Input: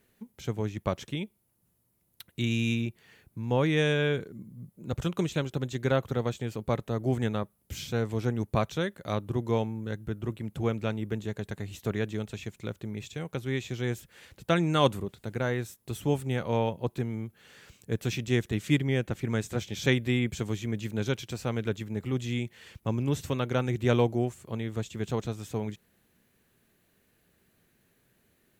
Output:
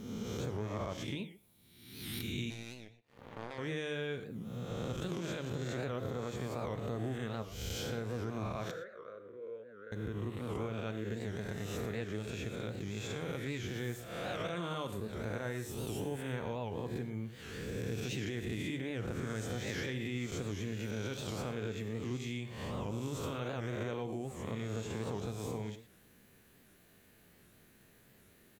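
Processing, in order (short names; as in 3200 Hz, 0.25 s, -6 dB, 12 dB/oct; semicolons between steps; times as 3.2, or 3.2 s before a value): spectral swells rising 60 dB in 1.04 s; limiter -18 dBFS, peak gain reduction 9.5 dB; compressor 4:1, threshold -40 dBFS, peak gain reduction 14.5 dB; 2.5–3.59 power-law curve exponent 3; 8.71–9.92 double band-pass 830 Hz, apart 1.5 oct; speakerphone echo 0.12 s, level -17 dB; non-linear reverb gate 0.14 s flat, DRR 9 dB; record warp 78 rpm, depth 160 cents; gain +2 dB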